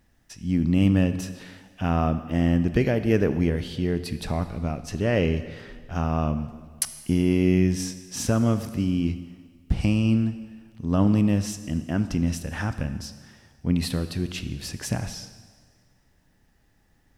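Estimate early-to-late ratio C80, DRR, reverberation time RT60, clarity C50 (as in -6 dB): 13.0 dB, 11.0 dB, 1.6 s, 12.0 dB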